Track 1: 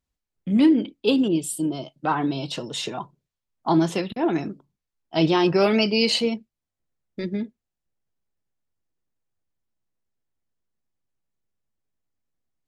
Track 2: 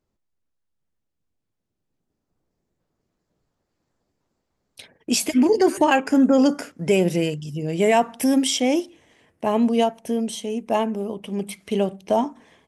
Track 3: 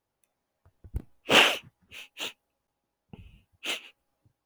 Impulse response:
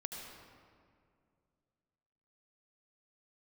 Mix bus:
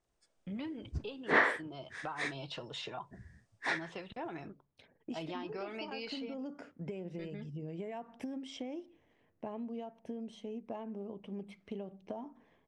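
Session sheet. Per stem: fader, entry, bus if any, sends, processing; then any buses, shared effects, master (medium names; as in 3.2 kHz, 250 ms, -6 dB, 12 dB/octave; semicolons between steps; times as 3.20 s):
-4.0 dB, 0.00 s, bus A, no send, peaking EQ 240 Hz -15 dB 2.2 oct
-14.0 dB, 0.00 s, bus A, no send, compression, threshold -17 dBFS, peak gain reduction 5.5 dB
-2.5 dB, 0.00 s, no bus, no send, frequency axis rescaled in octaves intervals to 82%; low-pass that closes with the level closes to 2.9 kHz, closed at -26 dBFS
bus A: 0.0 dB, tape spacing loss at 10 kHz 27 dB; compression 10:1, threshold -41 dBFS, peak gain reduction 15.5 dB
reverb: none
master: gain riding within 3 dB 0.5 s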